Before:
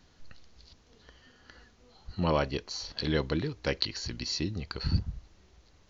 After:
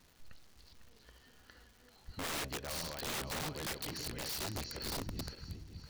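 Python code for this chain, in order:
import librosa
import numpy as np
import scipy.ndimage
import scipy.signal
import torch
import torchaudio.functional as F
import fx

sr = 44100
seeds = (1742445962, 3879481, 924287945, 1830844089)

y = fx.reverse_delay_fb(x, sr, ms=282, feedback_pct=63, wet_db=-9)
y = (np.mod(10.0 ** (27.5 / 20.0) * y + 1.0, 2.0) - 1.0) / 10.0 ** (27.5 / 20.0)
y = fx.dmg_crackle(y, sr, seeds[0], per_s=460.0, level_db=-47.0)
y = F.gain(torch.from_numpy(y), -6.0).numpy()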